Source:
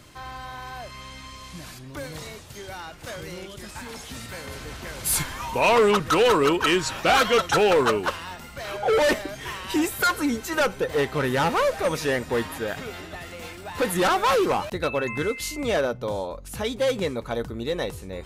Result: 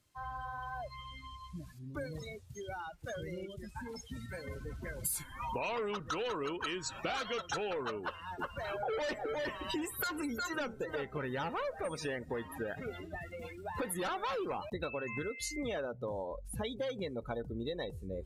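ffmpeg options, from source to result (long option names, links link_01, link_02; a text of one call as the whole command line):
ffmpeg -i in.wav -filter_complex "[0:a]asettb=1/sr,asplit=3[link_01][link_02][link_03];[link_01]atrim=end=8.024[link_04];[link_02]atrim=start=8.02:end=11.18,asetpts=PTS-STARTPTS,afade=type=in:duration=0.004:curve=qsin,afade=type=out:start_time=3.156:duration=0.004:curve=qsin,aecho=1:1:360:0.501,atrim=end_sample=139356[link_05];[link_03]atrim=start=11.176[link_06];[link_04][link_05]acrossfade=duration=0.004:curve1=hsin:curve2=qsin[link_07];[link_07][link_06]acrossfade=duration=0.004:curve1=qsin:curve2=hsin,afftdn=noise_reduction=25:noise_floor=-32,aemphasis=mode=production:type=cd,acompressor=threshold=-32dB:ratio=12,volume=-2.5dB" out.wav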